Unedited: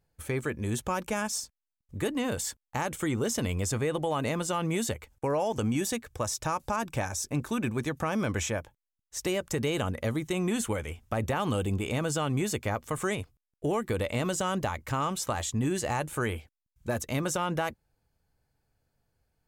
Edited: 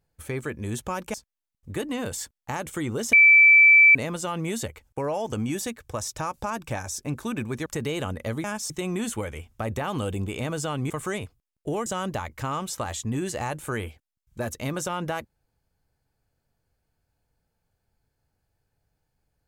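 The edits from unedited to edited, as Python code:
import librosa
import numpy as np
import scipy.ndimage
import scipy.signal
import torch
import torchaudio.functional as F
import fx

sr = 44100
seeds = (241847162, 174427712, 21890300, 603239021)

y = fx.edit(x, sr, fx.move(start_s=1.14, length_s=0.26, to_s=10.22),
    fx.bleep(start_s=3.39, length_s=0.82, hz=2320.0, db=-10.5),
    fx.cut(start_s=7.92, length_s=1.52),
    fx.cut(start_s=12.42, length_s=0.45),
    fx.cut(start_s=13.83, length_s=0.52), tone=tone)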